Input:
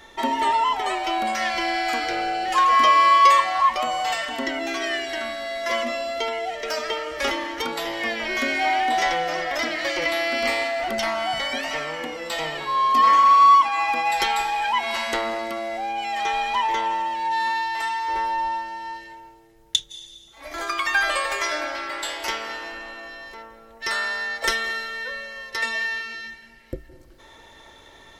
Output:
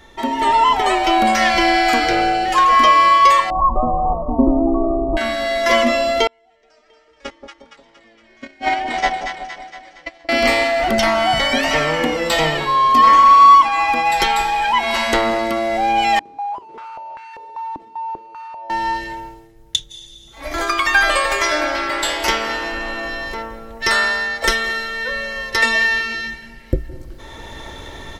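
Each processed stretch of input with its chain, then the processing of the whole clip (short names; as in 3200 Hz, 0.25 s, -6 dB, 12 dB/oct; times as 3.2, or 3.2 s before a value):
3.5–5.17 brick-wall FIR low-pass 1300 Hz + tilt -4 dB/oct
6.27–10.29 gate -20 dBFS, range -39 dB + steep low-pass 9200 Hz 48 dB/oct + split-band echo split 900 Hz, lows 0.178 s, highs 0.232 s, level -6 dB
16.19–18.7 fixed phaser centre 620 Hz, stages 4 + overloaded stage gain 34.5 dB + stepped band-pass 5.1 Hz 300–1700 Hz
whole clip: low shelf 260 Hz +10 dB; AGC gain up to 13 dB; gain -1 dB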